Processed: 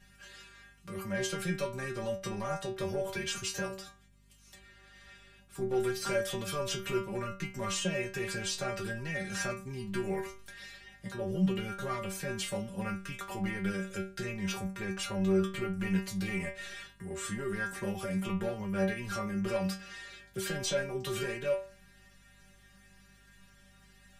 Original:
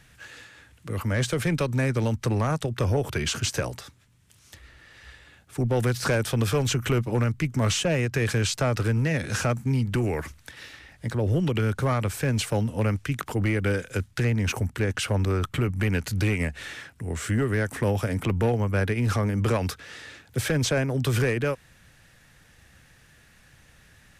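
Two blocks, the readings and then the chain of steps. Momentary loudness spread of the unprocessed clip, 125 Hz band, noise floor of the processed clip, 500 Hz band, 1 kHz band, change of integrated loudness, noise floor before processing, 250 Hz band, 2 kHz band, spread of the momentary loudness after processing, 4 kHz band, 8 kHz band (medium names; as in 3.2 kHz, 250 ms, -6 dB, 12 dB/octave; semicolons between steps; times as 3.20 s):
10 LU, -15.0 dB, -60 dBFS, -6.5 dB, -7.0 dB, -9.0 dB, -57 dBFS, -7.0 dB, -7.0 dB, 13 LU, -6.5 dB, -6.5 dB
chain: in parallel at -2 dB: peak limiter -24 dBFS, peak gain reduction 7 dB; on the sum: inharmonic resonator 190 Hz, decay 0.38 s, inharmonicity 0.002; hum 50 Hz, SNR 28 dB; trim +3.5 dB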